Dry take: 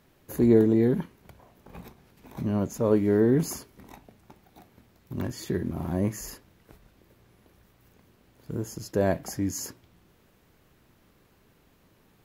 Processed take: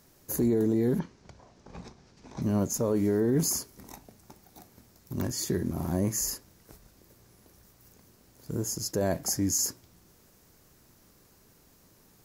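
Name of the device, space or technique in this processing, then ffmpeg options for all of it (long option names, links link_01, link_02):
over-bright horn tweeter: -filter_complex "[0:a]asettb=1/sr,asplit=3[link_01][link_02][link_03];[link_01]atrim=end=0.994[link_04];[link_02]atrim=start=0.99:end=2.42,asetpts=PTS-STARTPTS,afade=type=in:duration=0.004:curve=qsin,afade=type=out:start_time=1.426:duration=0.004:curve=qsin,lowpass=frequency=6100:width=0.5412,lowpass=frequency=6100:width=1.3066[link_05];[link_03]atrim=start=2.416[link_06];[link_04][link_05]acrossfade=duration=0.004:curve1=hsin:curve2=qsin[link_07];[link_07][link_06]acrossfade=duration=0.004:curve1=qsin:curve2=hsin,highshelf=frequency=4200:width_type=q:width=1.5:gain=8.5,alimiter=limit=-17.5dB:level=0:latency=1:release=28"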